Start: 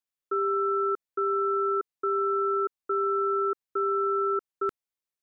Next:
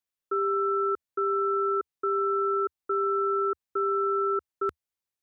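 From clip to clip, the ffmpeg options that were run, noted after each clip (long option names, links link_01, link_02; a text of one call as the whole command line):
ffmpeg -i in.wav -af "equalizer=frequency=76:width=2.1:gain=7" out.wav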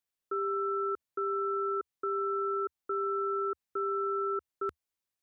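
ffmpeg -i in.wav -af "alimiter=level_in=1.5dB:limit=-24dB:level=0:latency=1:release=75,volume=-1.5dB" out.wav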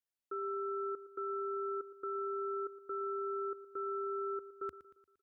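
ffmpeg -i in.wav -af "aecho=1:1:116|232|348|464|580:0.178|0.0889|0.0445|0.0222|0.0111,volume=-7dB" out.wav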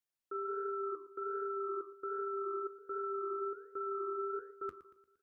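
ffmpeg -i in.wav -af "flanger=delay=9:depth=8.3:regen=-66:speed=1.3:shape=sinusoidal,volume=4dB" out.wav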